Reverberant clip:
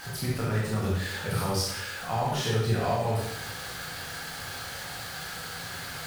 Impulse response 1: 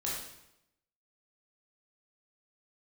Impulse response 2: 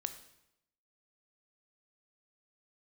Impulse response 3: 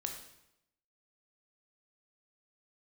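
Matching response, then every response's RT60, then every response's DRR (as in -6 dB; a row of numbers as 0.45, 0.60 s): 1; 0.85, 0.85, 0.85 s; -5.5, 9.0, 3.0 dB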